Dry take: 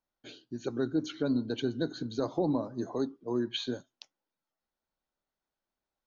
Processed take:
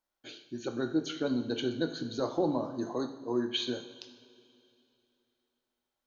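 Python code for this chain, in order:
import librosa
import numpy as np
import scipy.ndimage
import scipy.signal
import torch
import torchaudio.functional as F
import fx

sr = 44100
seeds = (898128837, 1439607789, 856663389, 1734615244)

y = fx.low_shelf(x, sr, hz=360.0, db=-6.5)
y = fx.rev_double_slope(y, sr, seeds[0], early_s=0.71, late_s=3.0, knee_db=-15, drr_db=5.5)
y = y * librosa.db_to_amplitude(2.0)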